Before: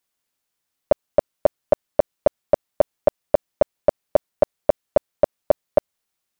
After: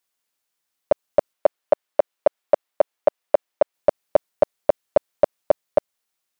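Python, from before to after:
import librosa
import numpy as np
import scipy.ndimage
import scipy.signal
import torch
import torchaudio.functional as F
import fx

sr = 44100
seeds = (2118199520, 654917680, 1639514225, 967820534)

y = fx.bass_treble(x, sr, bass_db=-11, treble_db=-5, at=(1.33, 3.74))
y = fx.rider(y, sr, range_db=10, speed_s=0.5)
y = fx.low_shelf(y, sr, hz=270.0, db=-8.5)
y = F.gain(torch.from_numpy(y), 2.0).numpy()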